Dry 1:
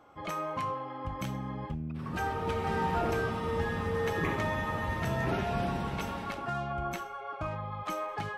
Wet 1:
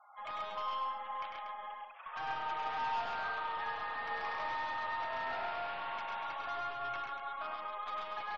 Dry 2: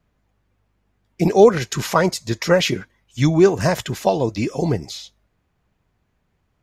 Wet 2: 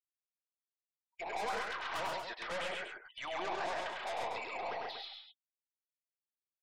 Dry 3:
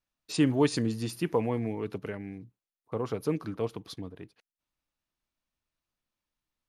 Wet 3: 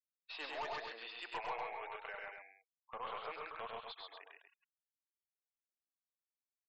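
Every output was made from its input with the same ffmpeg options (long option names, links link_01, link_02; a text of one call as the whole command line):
ffmpeg -i in.wav -filter_complex "[0:a]asuperpass=centerf=1600:order=8:qfactor=0.54,acrossover=split=1400[link_01][link_02];[link_02]acompressor=threshold=-44dB:ratio=10[link_03];[link_01][link_03]amix=inputs=2:normalize=0,aeval=exprs='(tanh(79.4*val(0)+0.15)-tanh(0.15))/79.4':channel_layout=same,afftfilt=real='re*gte(hypot(re,im),0.00141)':imag='im*gte(hypot(re,im),0.00141)':win_size=1024:overlap=0.75,aecho=1:1:99.13|134.1|239.1:0.631|0.708|0.398" out.wav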